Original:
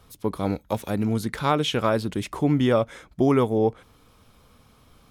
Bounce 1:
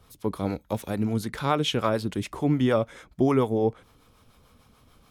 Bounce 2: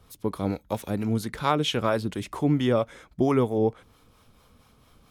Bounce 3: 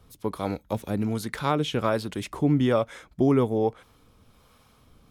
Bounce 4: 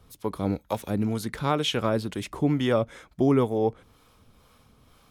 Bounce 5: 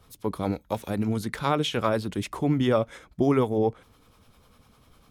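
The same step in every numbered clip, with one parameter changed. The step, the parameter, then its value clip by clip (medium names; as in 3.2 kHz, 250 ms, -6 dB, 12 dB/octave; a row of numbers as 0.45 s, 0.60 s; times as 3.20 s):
harmonic tremolo, rate: 6.8 Hz, 4.4 Hz, 1.2 Hz, 2.1 Hz, 10 Hz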